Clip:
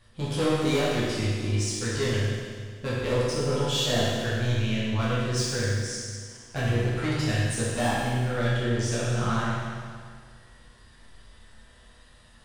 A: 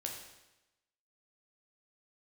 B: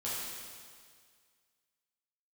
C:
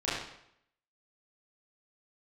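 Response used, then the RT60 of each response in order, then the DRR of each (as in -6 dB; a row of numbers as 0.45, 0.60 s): B; 1.0, 1.9, 0.75 s; 0.0, -9.0, -11.0 dB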